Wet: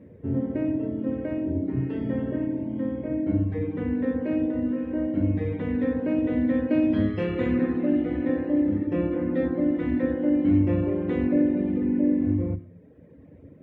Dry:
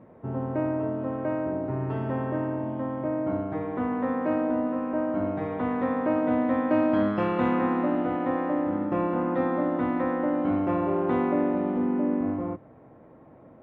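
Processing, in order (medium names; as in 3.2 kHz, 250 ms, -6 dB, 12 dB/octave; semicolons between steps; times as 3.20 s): feedback echo behind a high-pass 92 ms, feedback 48%, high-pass 1.5 kHz, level -9 dB; on a send at -11 dB: reverberation RT60 1.1 s, pre-delay 3 ms; on the sum: reverb removal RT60 0.87 s; high-order bell 970 Hz -14.5 dB 1.3 oct; trim +2 dB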